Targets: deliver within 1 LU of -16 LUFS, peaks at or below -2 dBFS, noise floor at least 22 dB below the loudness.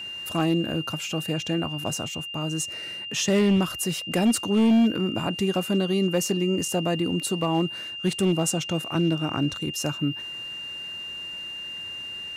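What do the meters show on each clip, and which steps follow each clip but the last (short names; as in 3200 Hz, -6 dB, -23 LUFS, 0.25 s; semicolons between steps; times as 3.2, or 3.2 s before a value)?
clipped 1.3%; flat tops at -15.5 dBFS; steady tone 2800 Hz; tone level -33 dBFS; loudness -25.5 LUFS; peak -15.5 dBFS; loudness target -16.0 LUFS
-> clip repair -15.5 dBFS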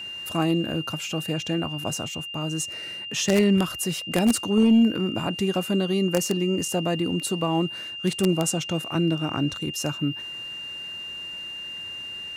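clipped 0.0%; steady tone 2800 Hz; tone level -33 dBFS
-> notch 2800 Hz, Q 30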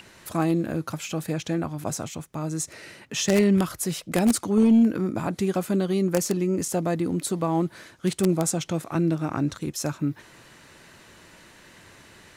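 steady tone none; loudness -25.0 LUFS; peak -6.5 dBFS; loudness target -16.0 LUFS
-> gain +9 dB; limiter -2 dBFS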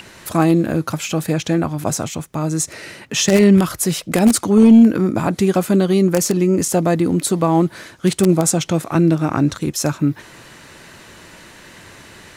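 loudness -16.5 LUFS; peak -2.0 dBFS; noise floor -43 dBFS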